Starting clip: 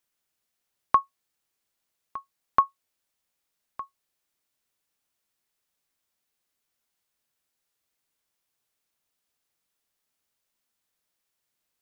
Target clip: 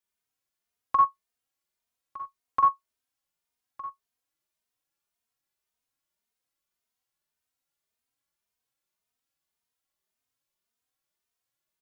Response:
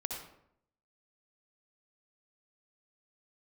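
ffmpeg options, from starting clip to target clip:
-filter_complex "[1:a]atrim=start_sample=2205,atrim=end_sample=6174,asetrate=61740,aresample=44100[link_01];[0:a][link_01]afir=irnorm=-1:irlink=0,asplit=2[link_02][link_03];[link_03]adelay=3,afreqshift=1.8[link_04];[link_02][link_04]amix=inputs=2:normalize=1"

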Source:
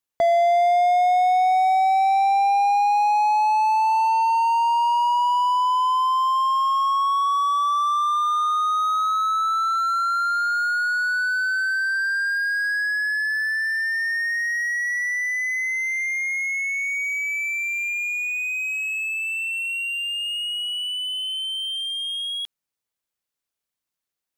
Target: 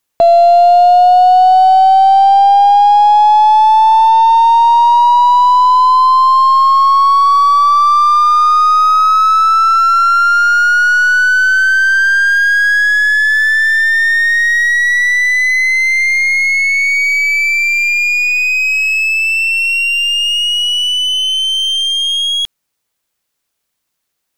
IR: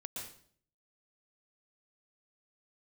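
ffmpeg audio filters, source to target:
-af "asoftclip=type=tanh:threshold=-15dB,aeval=exprs='0.158*(cos(1*acos(clip(val(0)/0.158,-1,1)))-cos(1*PI/2))+0.00708*(cos(6*acos(clip(val(0)/0.158,-1,1)))-cos(6*PI/2))':channel_layout=same,acontrast=56,volume=7.5dB"

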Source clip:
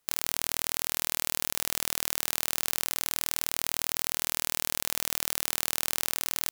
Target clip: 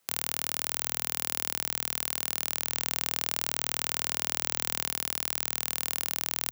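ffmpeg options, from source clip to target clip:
ffmpeg -i in.wav -filter_complex "[0:a]asettb=1/sr,asplit=3[link_01][link_02][link_03];[link_01]atrim=end=2.724[link_04];[link_02]atrim=start=2.72:end=4.89,asetpts=PTS-STARTPTS,afade=type=in:duration=0.004:curve=qsin,afade=type=out:start_time=2.166:duration=0.004:curve=qsin,equalizer=frequency=12000:width_type=o:width=0.25:gain=-14.5[link_05];[link_03]atrim=start=4.886[link_06];[link_04][link_05]acrossfade=duration=0.004:curve1=hsin:curve2=qsin[link_07];[link_07][link_06]acrossfade=duration=0.004:curve1=qsin:curve2=hsin,alimiter=limit=-6.5dB:level=0:latency=1,afreqshift=59,volume=4dB" out.wav

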